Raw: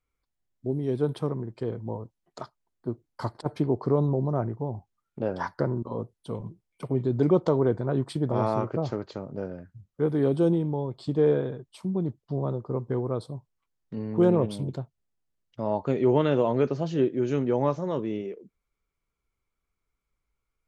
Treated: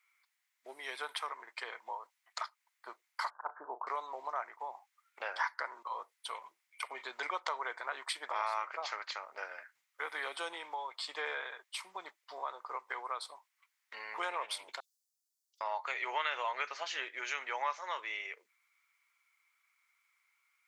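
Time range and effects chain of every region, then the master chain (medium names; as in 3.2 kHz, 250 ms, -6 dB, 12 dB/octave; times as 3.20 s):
3.30–3.87 s: steep low-pass 1.6 kHz 96 dB/octave + low-pass that closes with the level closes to 980 Hz, closed at -25 dBFS + doubling 34 ms -12 dB
14.80–15.61 s: inverse Chebyshev high-pass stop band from 1.9 kHz, stop band 50 dB + transient shaper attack -9 dB, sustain +4 dB
whole clip: high-pass 1 kHz 24 dB/octave; peaking EQ 2.1 kHz +10 dB 0.48 oct; compression 2:1, threshold -48 dBFS; trim +9.5 dB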